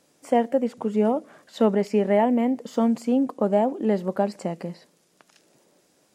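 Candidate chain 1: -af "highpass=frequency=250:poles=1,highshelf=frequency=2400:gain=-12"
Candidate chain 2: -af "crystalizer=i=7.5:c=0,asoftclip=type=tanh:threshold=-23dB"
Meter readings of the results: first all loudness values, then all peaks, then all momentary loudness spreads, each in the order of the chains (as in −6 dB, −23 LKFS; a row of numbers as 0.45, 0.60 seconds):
−26.0, −28.5 LKFS; −10.5, −23.0 dBFS; 8, 18 LU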